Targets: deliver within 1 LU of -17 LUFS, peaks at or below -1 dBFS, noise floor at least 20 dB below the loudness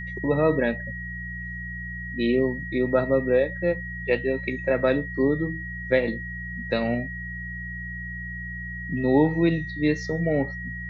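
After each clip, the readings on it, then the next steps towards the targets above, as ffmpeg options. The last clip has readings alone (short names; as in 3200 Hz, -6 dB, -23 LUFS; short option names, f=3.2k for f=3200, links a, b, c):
hum 60 Hz; harmonics up to 180 Hz; hum level -34 dBFS; steady tone 1900 Hz; tone level -34 dBFS; loudness -25.5 LUFS; peak -7.5 dBFS; loudness target -17.0 LUFS
-> -af "bandreject=f=60:t=h:w=4,bandreject=f=120:t=h:w=4,bandreject=f=180:t=h:w=4"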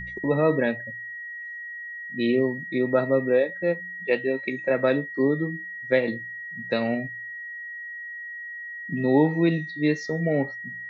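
hum none; steady tone 1900 Hz; tone level -34 dBFS
-> -af "bandreject=f=1.9k:w=30"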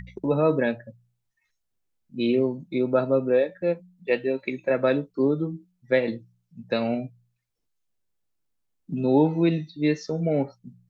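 steady tone none; loudness -25.0 LUFS; peak -7.5 dBFS; loudness target -17.0 LUFS
-> -af "volume=8dB,alimiter=limit=-1dB:level=0:latency=1"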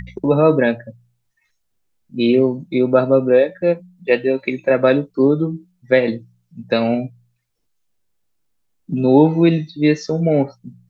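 loudness -17.0 LUFS; peak -1.0 dBFS; noise floor -69 dBFS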